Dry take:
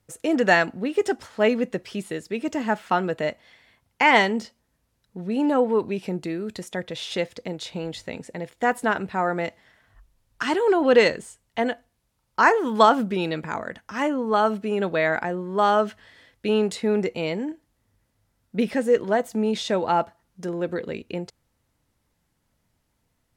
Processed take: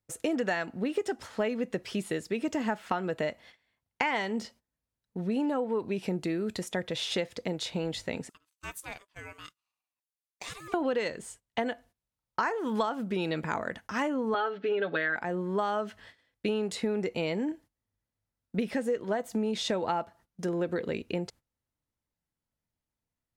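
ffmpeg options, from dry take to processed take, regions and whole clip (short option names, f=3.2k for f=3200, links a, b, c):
-filter_complex "[0:a]asettb=1/sr,asplit=3[a][b][c];[a]atrim=end=8.294[d];[b]atrim=start=8.29:end=10.74,asetpts=PTS-STARTPTS,afade=t=in:d=0.004:c=qsin,afade=t=out:st=2.446:d=0.004:c=qsin,aderivative,aeval=exprs='val(0)*sin(2*PI*800*n/s)':c=same[e];[c]atrim=start=10.736[f];[d][e]acrossfade=d=0.004:c1=hsin:c2=qsin[g];[g][f]acrossfade=d=0.004:c1=qsin:c2=hsin,asettb=1/sr,asplit=3[h][i][j];[h]atrim=end=14.344[k];[i]atrim=start=14.34:end=15.16,asetpts=PTS-STARTPTS,afade=t=in:d=0.004:c=qsin,afade=t=out:st=0.816:d=0.004:c=qsin,highpass=230,equalizer=f=980:t=q:w=4:g=-7,equalizer=f=1.6k:t=q:w=4:g=7,equalizer=f=3.4k:t=q:w=4:g=4,lowpass=f=4.2k:w=0.5412,lowpass=f=4.2k:w=1.3066,aecho=1:1:7:0.78,atrim=end_sample=36162[l];[j]atrim=start=15.156[m];[k][l]acrossfade=d=0.004:c1=hsin:c2=qsin[n];[n][m]acrossfade=d=0.004:c1=qsin:c2=hsin,agate=range=-18dB:threshold=-49dB:ratio=16:detection=peak,acompressor=threshold=-26dB:ratio=10"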